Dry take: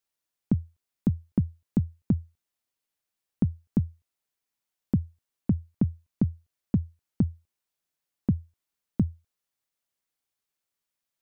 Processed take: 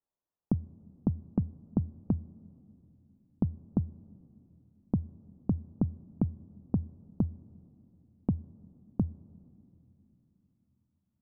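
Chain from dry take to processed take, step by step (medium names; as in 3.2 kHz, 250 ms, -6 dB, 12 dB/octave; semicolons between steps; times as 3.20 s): low-pass 1.1 kHz 24 dB/octave; compression 2:1, threshold -27 dBFS, peak gain reduction 5 dB; on a send: reverberation RT60 3.0 s, pre-delay 6 ms, DRR 21 dB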